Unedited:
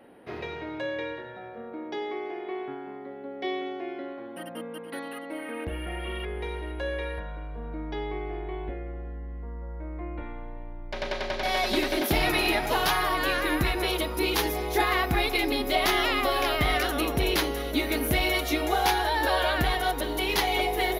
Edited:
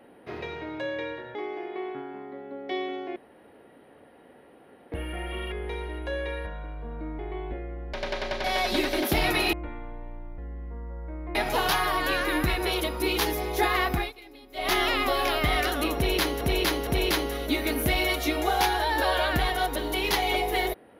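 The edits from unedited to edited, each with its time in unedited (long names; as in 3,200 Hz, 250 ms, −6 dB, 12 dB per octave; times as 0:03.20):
0:01.35–0:02.08: remove
0:03.89–0:05.65: fill with room tone
0:07.92–0:08.36: remove
0:09.10–0:10.07: swap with 0:10.92–0:12.52
0:15.10–0:15.90: duck −22 dB, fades 0.20 s
0:17.12–0:17.58: repeat, 3 plays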